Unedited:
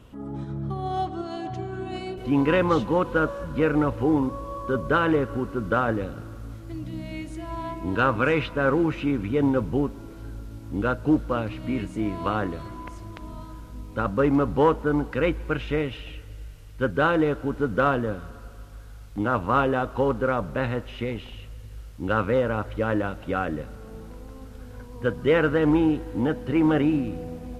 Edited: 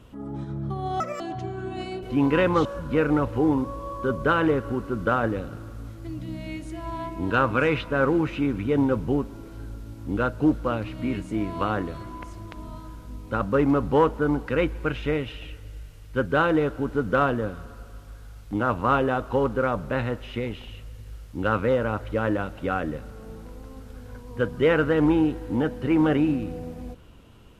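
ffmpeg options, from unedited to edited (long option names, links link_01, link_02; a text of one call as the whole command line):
ffmpeg -i in.wav -filter_complex "[0:a]asplit=4[link_01][link_02][link_03][link_04];[link_01]atrim=end=1.004[link_05];[link_02]atrim=start=1:end=1.35,asetpts=PTS-STARTPTS,asetrate=76734,aresample=44100[link_06];[link_03]atrim=start=1.346:end=2.802[link_07];[link_04]atrim=start=3.298[link_08];[link_05][link_06]acrossfade=duration=0.004:curve1=hsin:curve2=hsin[link_09];[link_09][link_07]acrossfade=duration=0.004:curve1=hsin:curve2=hsin[link_10];[link_10][link_08]acrossfade=duration=0.004:curve1=hsin:curve2=hsin" out.wav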